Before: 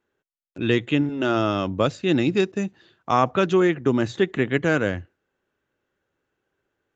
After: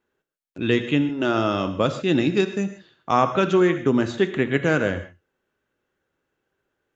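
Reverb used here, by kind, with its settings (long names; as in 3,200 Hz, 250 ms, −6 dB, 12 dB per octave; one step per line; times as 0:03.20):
reverb whose tail is shaped and stops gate 170 ms flat, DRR 9 dB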